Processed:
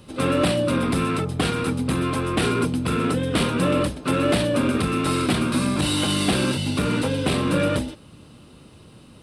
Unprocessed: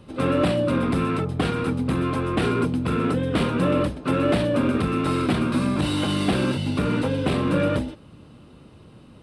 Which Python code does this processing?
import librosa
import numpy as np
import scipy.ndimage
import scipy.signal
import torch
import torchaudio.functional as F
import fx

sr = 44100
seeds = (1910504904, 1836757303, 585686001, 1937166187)

y = fx.high_shelf(x, sr, hz=3700.0, db=12.0)